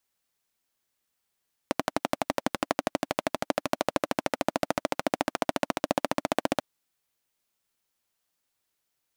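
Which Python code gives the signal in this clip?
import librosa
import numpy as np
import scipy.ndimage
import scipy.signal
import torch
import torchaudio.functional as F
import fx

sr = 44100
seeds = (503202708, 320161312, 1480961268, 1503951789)

y = fx.engine_single_rev(sr, seeds[0], length_s=4.89, rpm=1400, resonances_hz=(290.0, 590.0), end_rpm=1800)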